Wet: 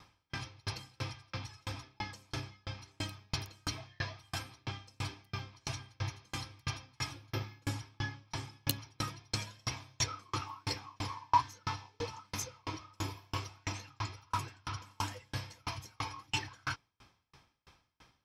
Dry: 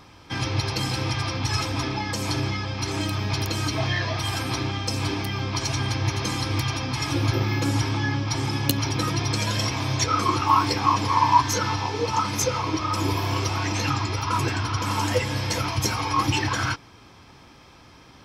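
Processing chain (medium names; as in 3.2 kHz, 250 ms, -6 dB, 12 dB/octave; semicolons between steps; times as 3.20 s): peaking EQ 320 Hz -6.5 dB 1.9 oct; sawtooth tremolo in dB decaying 3 Hz, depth 39 dB; trim -5 dB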